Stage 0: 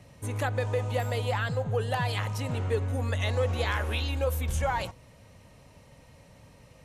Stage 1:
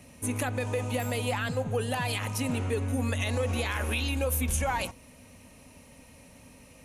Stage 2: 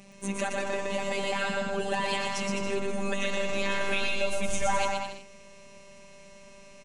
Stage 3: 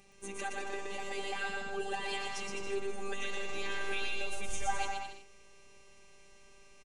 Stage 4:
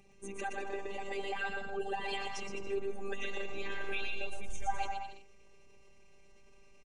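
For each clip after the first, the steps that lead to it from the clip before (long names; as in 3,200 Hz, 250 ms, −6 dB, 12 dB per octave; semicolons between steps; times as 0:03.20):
thirty-one-band graphic EQ 125 Hz −9 dB, 250 Hz +11 dB, 2,500 Hz +7 dB, 6,300 Hz +4 dB, 10,000 Hz +9 dB; brickwall limiter −19.5 dBFS, peak gain reduction 6 dB; high-shelf EQ 11,000 Hz +11 dB
Butterworth low-pass 8,200 Hz 36 dB per octave; phases set to zero 197 Hz; on a send: bouncing-ball delay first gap 120 ms, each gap 0.75×, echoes 5; on the sum: level +3 dB
comb filter 2.5 ms, depth 67%; level −8.5 dB
spectral envelope exaggerated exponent 1.5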